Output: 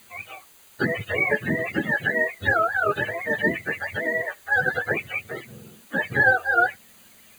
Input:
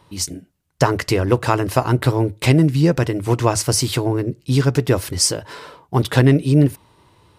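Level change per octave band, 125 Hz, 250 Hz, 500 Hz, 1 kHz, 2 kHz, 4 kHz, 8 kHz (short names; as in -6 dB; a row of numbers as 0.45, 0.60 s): -19.5 dB, -13.5 dB, -7.0 dB, -2.5 dB, +9.0 dB, -15.0 dB, under -20 dB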